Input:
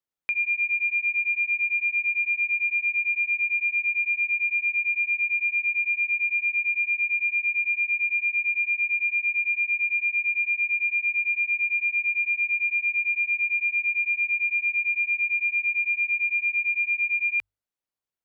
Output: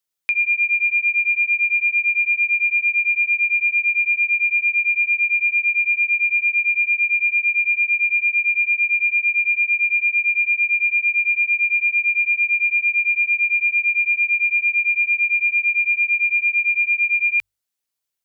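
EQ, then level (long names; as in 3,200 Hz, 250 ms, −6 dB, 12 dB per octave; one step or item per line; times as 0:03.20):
high-shelf EQ 2,300 Hz +12 dB
0.0 dB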